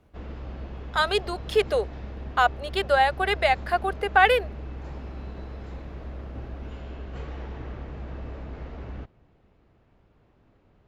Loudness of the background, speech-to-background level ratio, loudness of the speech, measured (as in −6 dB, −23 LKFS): −39.0 LKFS, 15.5 dB, −23.5 LKFS